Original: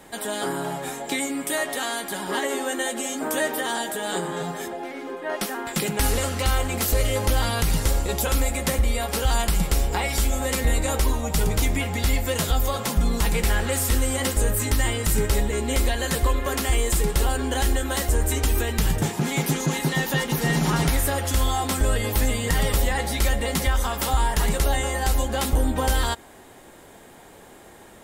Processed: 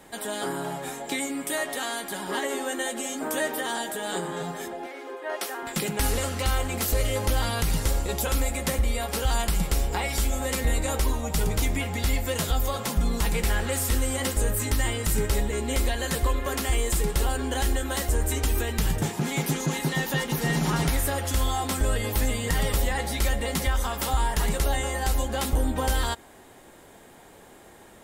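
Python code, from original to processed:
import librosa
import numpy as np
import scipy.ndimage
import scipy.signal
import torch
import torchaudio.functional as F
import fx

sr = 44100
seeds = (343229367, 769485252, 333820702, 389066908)

y = fx.highpass(x, sr, hz=340.0, slope=24, at=(4.86, 5.63))
y = y * 10.0 ** (-3.0 / 20.0)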